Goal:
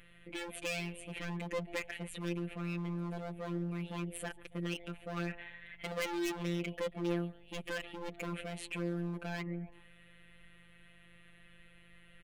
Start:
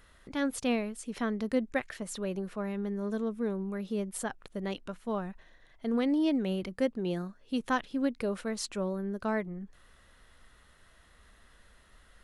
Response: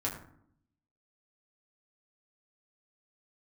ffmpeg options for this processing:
-filter_complex "[0:a]firequalizer=gain_entry='entry(120,0);entry(430,7);entry(920,-6);entry(2500,15);entry(5200,-17);entry(9200,-1)':delay=0.05:min_phase=1,aeval=exprs='val(0)+0.00178*(sin(2*PI*50*n/s)+sin(2*PI*2*50*n/s)/2+sin(2*PI*3*50*n/s)/3+sin(2*PI*4*50*n/s)/4+sin(2*PI*5*50*n/s)/5)':c=same,asplit=3[s0][s1][s2];[s0]afade=t=out:st=5.16:d=0.02[s3];[s1]equalizer=f=1900:t=o:w=2.7:g=11.5,afade=t=in:st=5.16:d=0.02,afade=t=out:st=6.28:d=0.02[s4];[s2]afade=t=in:st=6.28:d=0.02[s5];[s3][s4][s5]amix=inputs=3:normalize=0,asplit=4[s6][s7][s8][s9];[s7]adelay=140,afreqshift=130,volume=0.0708[s10];[s8]adelay=280,afreqshift=260,volume=0.0292[s11];[s9]adelay=420,afreqshift=390,volume=0.0119[s12];[s6][s10][s11][s12]amix=inputs=4:normalize=0,asoftclip=type=hard:threshold=0.0376,afftfilt=real='hypot(re,im)*cos(PI*b)':imag='0':win_size=1024:overlap=0.75,volume=0.841"

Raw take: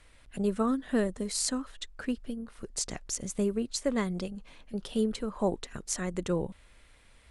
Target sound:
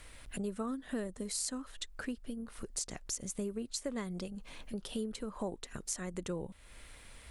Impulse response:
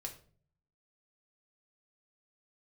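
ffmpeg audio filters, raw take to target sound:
-af "highshelf=f=10000:g=11,acompressor=threshold=0.00447:ratio=2.5,volume=1.78"

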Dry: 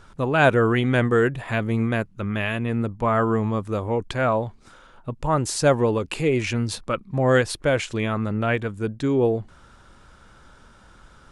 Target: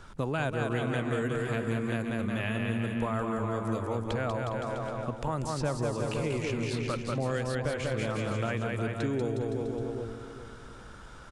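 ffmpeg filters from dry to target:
-filter_complex "[0:a]asplit=2[s0][s1];[s1]aecho=0:1:190|361|514.9|653.4|778.1:0.631|0.398|0.251|0.158|0.1[s2];[s0][s2]amix=inputs=2:normalize=0,acrossover=split=160|4700[s3][s4][s5];[s3]acompressor=threshold=0.0141:ratio=4[s6];[s4]acompressor=threshold=0.0251:ratio=4[s7];[s5]acompressor=threshold=0.00282:ratio=4[s8];[s6][s7][s8]amix=inputs=3:normalize=0,asplit=2[s9][s10];[s10]adelay=409,lowpass=f=2000:p=1,volume=0.282,asplit=2[s11][s12];[s12]adelay=409,lowpass=f=2000:p=1,volume=0.39,asplit=2[s13][s14];[s14]adelay=409,lowpass=f=2000:p=1,volume=0.39,asplit=2[s15][s16];[s16]adelay=409,lowpass=f=2000:p=1,volume=0.39[s17];[s11][s13][s15][s17]amix=inputs=4:normalize=0[s18];[s9][s18]amix=inputs=2:normalize=0"

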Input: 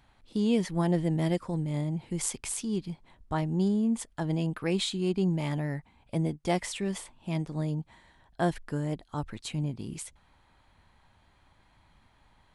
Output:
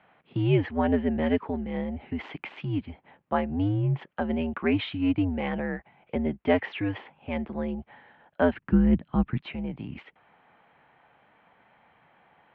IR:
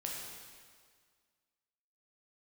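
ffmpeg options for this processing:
-filter_complex "[0:a]highpass=f=250:t=q:w=0.5412,highpass=f=250:t=q:w=1.307,lowpass=f=2900:t=q:w=0.5176,lowpass=f=2900:t=q:w=0.7071,lowpass=f=2900:t=q:w=1.932,afreqshift=-92,asplit=3[s0][s1][s2];[s0]afade=t=out:st=8.52:d=0.02[s3];[s1]asubboost=boost=7.5:cutoff=200,afade=t=in:st=8.52:d=0.02,afade=t=out:st=9.41:d=0.02[s4];[s2]afade=t=in:st=9.41:d=0.02[s5];[s3][s4][s5]amix=inputs=3:normalize=0,volume=2.11"

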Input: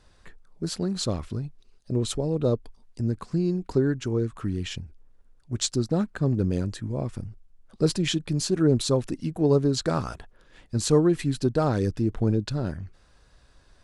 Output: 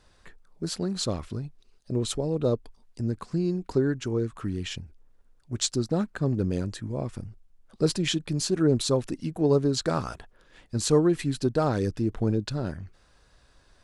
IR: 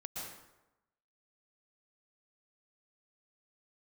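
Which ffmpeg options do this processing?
-af "lowshelf=f=230:g=-3.5"

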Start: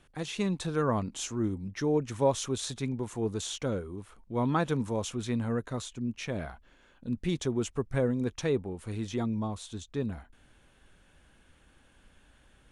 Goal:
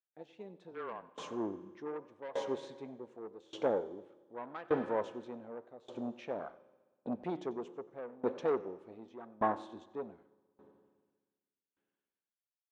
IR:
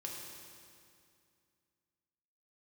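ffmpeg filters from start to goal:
-filter_complex "[0:a]afwtdn=0.0178,agate=range=0.112:threshold=0.00178:ratio=16:detection=peak,dynaudnorm=f=150:g=9:m=5.96,flanger=delay=9.2:depth=5.6:regen=87:speed=1.4:shape=triangular,asoftclip=type=tanh:threshold=0.15,asettb=1/sr,asplit=3[s0][s1][s2];[s0]atrim=end=0.714[s3];[s1]atrim=start=0.71:end=1.26,asetpts=PTS-STARTPTS,afade=t=in:d=0.004:c=qsin,afade=t=out:st=0.546:d=0.004:c=qsin,afreqshift=-20[s4];[s2]atrim=start=1.256[s5];[s3][s4]acrossfade=d=0.004:c1=hsin:c2=qsin[s6];[s6][s5]acrossfade=d=0.004:c1=qsin:c2=hsin,highpass=500,lowpass=3200,asplit=2[s7][s8];[1:a]atrim=start_sample=2205,adelay=92[s9];[s8][s9]afir=irnorm=-1:irlink=0,volume=0.211[s10];[s7][s10]amix=inputs=2:normalize=0,aeval=exprs='val(0)*pow(10,-23*if(lt(mod(0.85*n/s,1),2*abs(0.85)/1000),1-mod(0.85*n/s,1)/(2*abs(0.85)/1000),(mod(0.85*n/s,1)-2*abs(0.85)/1000)/(1-2*abs(0.85)/1000))/20)':c=same,volume=1.19"

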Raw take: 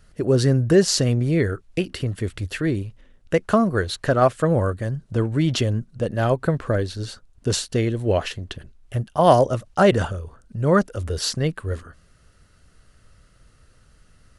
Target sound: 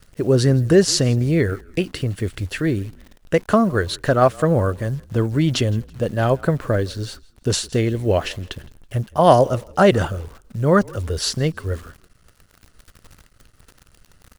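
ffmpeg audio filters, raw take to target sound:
-filter_complex "[0:a]acrusher=bits=9:dc=4:mix=0:aa=0.000001,asplit=3[s0][s1][s2];[s1]adelay=164,afreqshift=-42,volume=0.0631[s3];[s2]adelay=328,afreqshift=-84,volume=0.0195[s4];[s0][s3][s4]amix=inputs=3:normalize=0,volume=1.26"

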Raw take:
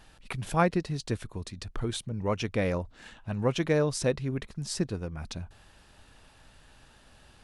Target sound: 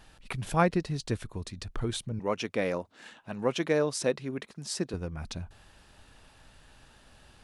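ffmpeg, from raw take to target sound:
-filter_complex "[0:a]asettb=1/sr,asplit=3[s0][s1][s2];[s0]atrim=end=2.194[s3];[s1]atrim=start=2.19:end=4.94,asetpts=PTS-STARTPTS,afade=t=in:d=0.004:c=qsin,afade=t=out:st=2.746:d=0.004:c=qsin,highpass=220[s4];[s2]atrim=start=4.936[s5];[s3][s4]acrossfade=d=0.004:c1=hsin:c2=qsin[s6];[s6][s5]acrossfade=d=0.004:c1=qsin:c2=hsin"

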